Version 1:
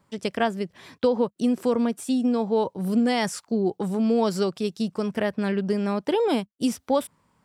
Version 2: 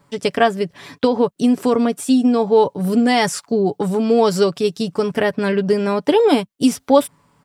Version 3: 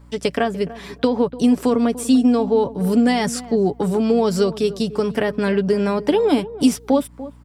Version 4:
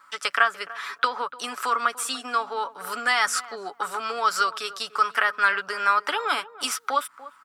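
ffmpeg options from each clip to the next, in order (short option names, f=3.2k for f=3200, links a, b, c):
-af "aecho=1:1:7:0.48,volume=7.5dB"
-filter_complex "[0:a]acrossover=split=350[a][b];[b]acompressor=threshold=-19dB:ratio=5[c];[a][c]amix=inputs=2:normalize=0,asplit=2[d][e];[e]adelay=293,lowpass=f=1k:p=1,volume=-15dB,asplit=2[f][g];[g]adelay=293,lowpass=f=1k:p=1,volume=0.21[h];[d][f][h]amix=inputs=3:normalize=0,aeval=exprs='val(0)+0.00631*(sin(2*PI*60*n/s)+sin(2*PI*2*60*n/s)/2+sin(2*PI*3*60*n/s)/3+sin(2*PI*4*60*n/s)/4+sin(2*PI*5*60*n/s)/5)':c=same"
-af "highpass=f=1.3k:t=q:w=6.9"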